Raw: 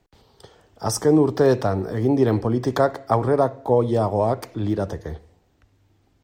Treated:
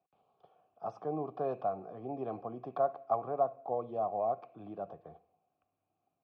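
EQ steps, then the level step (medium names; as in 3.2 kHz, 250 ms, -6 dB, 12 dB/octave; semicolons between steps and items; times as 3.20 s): vowel filter a; distance through air 260 m; peaking EQ 160 Hz +12 dB 1 oct; -4.0 dB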